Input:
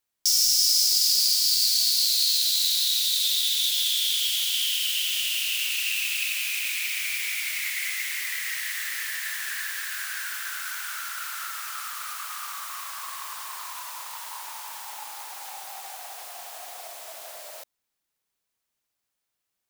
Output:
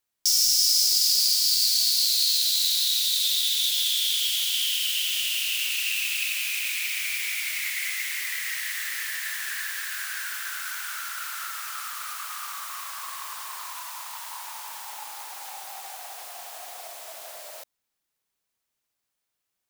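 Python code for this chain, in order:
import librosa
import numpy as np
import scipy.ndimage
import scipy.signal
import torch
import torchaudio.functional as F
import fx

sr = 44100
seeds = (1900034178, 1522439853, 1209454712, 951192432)

y = fx.highpass(x, sr, hz=570.0, slope=24, at=(13.75, 14.54))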